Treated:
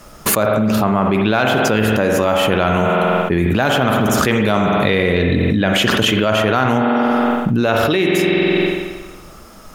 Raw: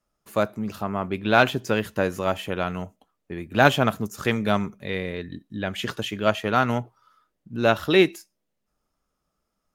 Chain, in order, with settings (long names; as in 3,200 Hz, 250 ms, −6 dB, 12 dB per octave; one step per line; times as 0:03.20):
spring reverb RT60 1.2 s, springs 46 ms, chirp 45 ms, DRR 6 dB
envelope flattener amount 100%
level −3 dB